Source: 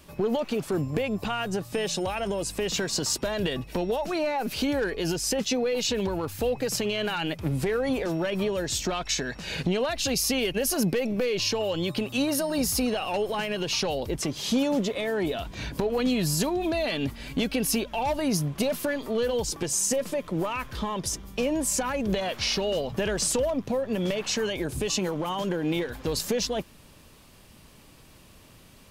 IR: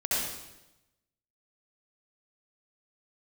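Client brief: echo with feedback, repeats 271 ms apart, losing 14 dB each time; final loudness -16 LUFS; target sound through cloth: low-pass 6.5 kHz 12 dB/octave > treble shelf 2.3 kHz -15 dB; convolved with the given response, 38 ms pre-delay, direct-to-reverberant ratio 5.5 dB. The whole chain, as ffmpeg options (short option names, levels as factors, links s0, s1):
-filter_complex "[0:a]aecho=1:1:271|542:0.2|0.0399,asplit=2[s0][s1];[1:a]atrim=start_sample=2205,adelay=38[s2];[s1][s2]afir=irnorm=-1:irlink=0,volume=0.188[s3];[s0][s3]amix=inputs=2:normalize=0,lowpass=6500,highshelf=f=2300:g=-15,volume=4.22"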